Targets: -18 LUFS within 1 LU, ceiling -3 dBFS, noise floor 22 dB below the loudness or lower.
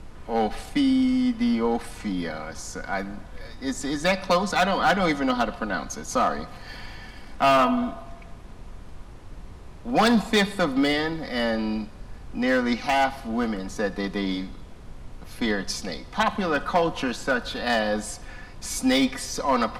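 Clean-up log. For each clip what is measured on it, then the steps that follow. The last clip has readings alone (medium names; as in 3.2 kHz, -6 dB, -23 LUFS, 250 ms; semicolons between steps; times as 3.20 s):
clipped samples 0.7%; clipping level -14.0 dBFS; noise floor -43 dBFS; noise floor target -47 dBFS; loudness -24.5 LUFS; peak level -14.0 dBFS; loudness target -18.0 LUFS
-> clip repair -14 dBFS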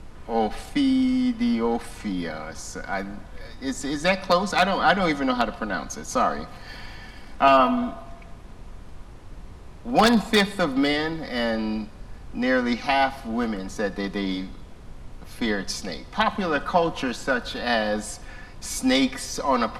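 clipped samples 0.0%; noise floor -43 dBFS; noise floor target -46 dBFS
-> noise print and reduce 6 dB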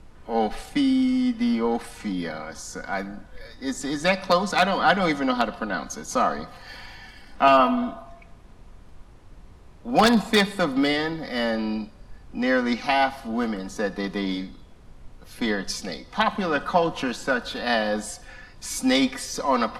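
noise floor -48 dBFS; loudness -24.0 LUFS; peak level -5.0 dBFS; loudness target -18.0 LUFS
-> trim +6 dB; peak limiter -3 dBFS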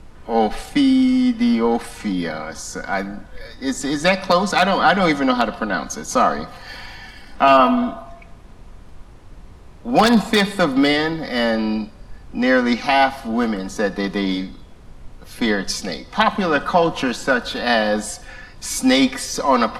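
loudness -18.5 LUFS; peak level -3.0 dBFS; noise floor -42 dBFS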